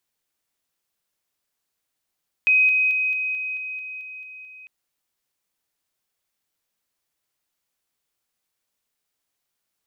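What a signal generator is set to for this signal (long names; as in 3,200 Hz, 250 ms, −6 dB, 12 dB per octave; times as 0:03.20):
level staircase 2,520 Hz −13.5 dBFS, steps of −3 dB, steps 10, 0.22 s 0.00 s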